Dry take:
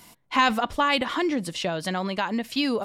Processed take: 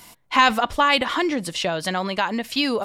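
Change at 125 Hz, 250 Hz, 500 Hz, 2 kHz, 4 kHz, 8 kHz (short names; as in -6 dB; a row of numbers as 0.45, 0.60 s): +1.0, +1.0, +3.0, +5.0, +5.0, +5.0 dB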